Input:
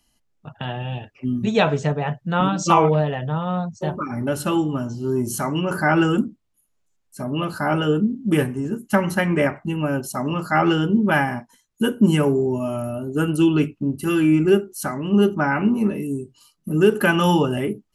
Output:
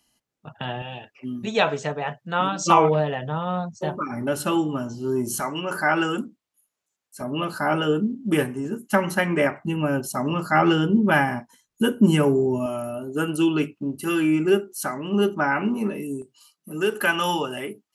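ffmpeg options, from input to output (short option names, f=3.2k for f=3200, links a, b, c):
-af "asetnsamples=n=441:p=0,asendcmd='0.82 highpass f 520;2.64 highpass f 230;5.4 highpass f 610;7.21 highpass f 260;9.59 highpass f 100;12.66 highpass f 360;16.22 highpass f 880',highpass=f=170:p=1"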